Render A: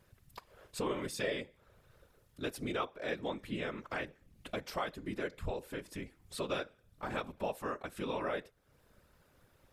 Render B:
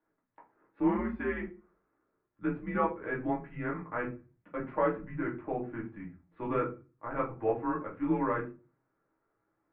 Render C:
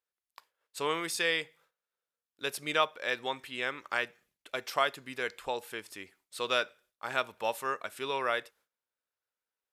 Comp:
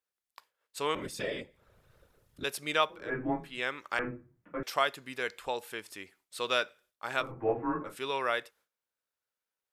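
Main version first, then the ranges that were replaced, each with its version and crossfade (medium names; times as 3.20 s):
C
0.95–2.44 s: from A
2.99–3.49 s: from B, crossfade 0.24 s
3.99–4.63 s: from B
7.25–7.91 s: from B, crossfade 0.16 s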